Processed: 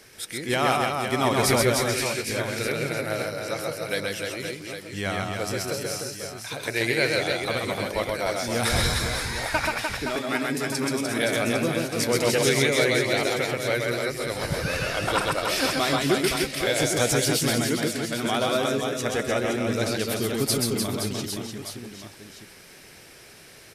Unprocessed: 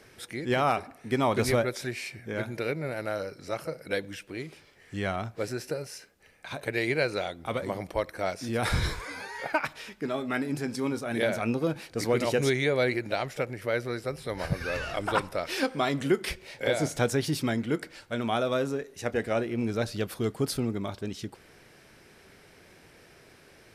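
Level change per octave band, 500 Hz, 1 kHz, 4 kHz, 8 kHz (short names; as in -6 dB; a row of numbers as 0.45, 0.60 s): +4.0, +4.5, +10.5, +13.0 dB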